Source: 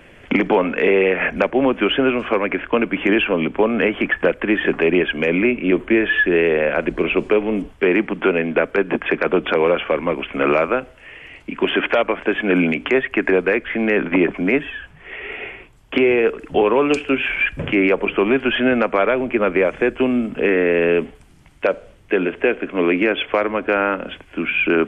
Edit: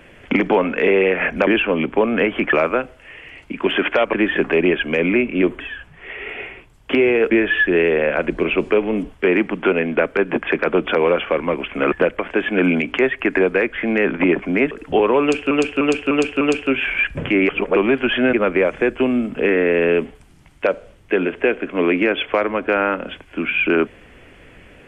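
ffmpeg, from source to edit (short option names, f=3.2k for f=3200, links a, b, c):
-filter_complex "[0:a]asplit=16[a][b][c][d][e][f][g][h][i][j][k][l][m][n][o][p];[a]atrim=end=1.472[q];[b]atrim=start=3.088:end=4.152[r];[c]atrim=start=10.508:end=12.112[s];[d]atrim=start=4.418:end=5.892[t];[e]atrim=start=14.628:end=16.332[u];[f]atrim=start=5.888:end=10.512[v];[g]atrim=start=4.148:end=4.422[w];[h]atrim=start=12.108:end=14.632[x];[i]atrim=start=16.328:end=17.132[y];[j]atrim=start=16.828:end=17.132[z];[k]atrim=start=16.828:end=17.132[aa];[l]atrim=start=16.828:end=17.132[ab];[m]atrim=start=16.828:end=17.912[ac];[n]atrim=start=17.908:end=18.182,asetpts=PTS-STARTPTS,areverse[ad];[o]atrim=start=18.178:end=18.752[ae];[p]atrim=start=19.328[af];[q][r]acrossfade=d=0.004:c1=hsin:c2=hsin[ag];[ag][s]acrossfade=d=0.004:c1=hsin:c2=hsin[ah];[ah][t]acrossfade=d=0.004:c1=hsin:c2=hsin[ai];[ai][u]acrossfade=d=0.004:c1=hsin:c2=hsin[aj];[aj][v]acrossfade=d=0.004:c1=hsin:c2=hsin[ak];[ak][w]acrossfade=d=0.004:c1=hsin:c2=hsin[al];[al][x]acrossfade=d=0.004:c1=hsin:c2=hsin[am];[am][y]acrossfade=d=0.004:c1=hsin:c2=hsin[an];[an][z]acrossfade=d=0.004:c1=hsin:c2=hsin[ao];[ao][aa]acrossfade=d=0.004:c1=hsin:c2=hsin[ap];[ap][ab]acrossfade=d=0.004:c1=hsin:c2=hsin[aq];[aq][ac]acrossfade=d=0.004:c1=hsin:c2=hsin[ar];[ar][ad]acrossfade=d=0.004:c1=hsin:c2=hsin[as];[as][ae]acrossfade=d=0.004:c1=hsin:c2=hsin[at];[at][af]acrossfade=d=0.004:c1=hsin:c2=hsin"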